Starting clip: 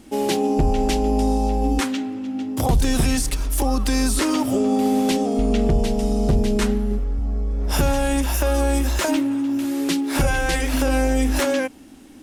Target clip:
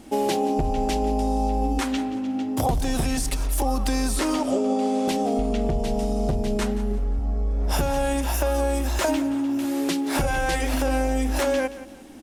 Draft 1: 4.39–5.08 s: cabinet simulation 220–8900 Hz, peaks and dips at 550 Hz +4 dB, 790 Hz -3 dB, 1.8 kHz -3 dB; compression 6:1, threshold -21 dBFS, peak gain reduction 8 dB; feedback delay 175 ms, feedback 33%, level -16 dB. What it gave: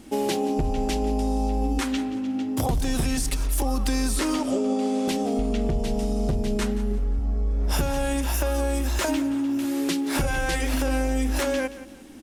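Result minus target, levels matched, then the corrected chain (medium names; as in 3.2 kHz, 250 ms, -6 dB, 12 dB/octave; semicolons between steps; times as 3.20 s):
1 kHz band -3.5 dB
4.39–5.08 s: cabinet simulation 220–8900 Hz, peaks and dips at 550 Hz +4 dB, 790 Hz -3 dB, 1.8 kHz -3 dB; compression 6:1, threshold -21 dBFS, peak gain reduction 8 dB; peaking EQ 720 Hz +5.5 dB 0.94 oct; feedback delay 175 ms, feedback 33%, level -16 dB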